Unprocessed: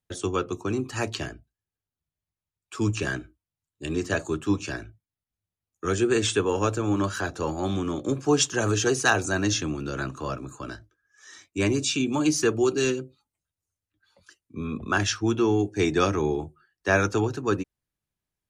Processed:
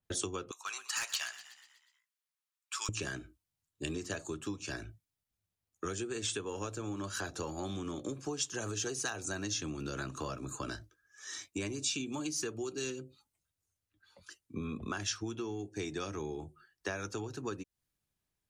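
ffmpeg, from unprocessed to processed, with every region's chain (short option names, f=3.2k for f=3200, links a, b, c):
-filter_complex "[0:a]asettb=1/sr,asplit=3[a][b][c];[a]atrim=end=0.514[d];[b]atrim=start=0.51:end=2.89,asetpts=PTS-STARTPTS,afade=t=in:d=0.004:c=qsin,afade=t=out:st=2.376:d=0.004:c=qsin,highpass=f=1k:w=0.5412,highpass=f=1k:w=1.3066,volume=29.5dB,asoftclip=hard,volume=-29.5dB,asplit=7[e][f][g][h][i][j][k];[f]adelay=122,afreqshift=57,volume=-17dB[l];[g]adelay=244,afreqshift=114,volume=-21.4dB[m];[h]adelay=366,afreqshift=171,volume=-25.9dB[n];[i]adelay=488,afreqshift=228,volume=-30.3dB[o];[j]adelay=610,afreqshift=285,volume=-34.7dB[p];[k]adelay=732,afreqshift=342,volume=-39.2dB[q];[e][l][m][n][o][p][q]amix=inputs=7:normalize=0,atrim=end_sample=104958[r];[c]atrim=start=2.886[s];[d][r]acrossfade=d=0.004:c1=hsin:c2=qsin[t];[t][s]acrossfade=d=0.004:c1=qsin:c2=hsin,acompressor=threshold=-35dB:ratio=16,adynamicequalizer=threshold=0.00158:dfrequency=3100:dqfactor=0.7:tfrequency=3100:tqfactor=0.7:attack=5:release=100:ratio=0.375:range=3.5:mode=boostabove:tftype=highshelf"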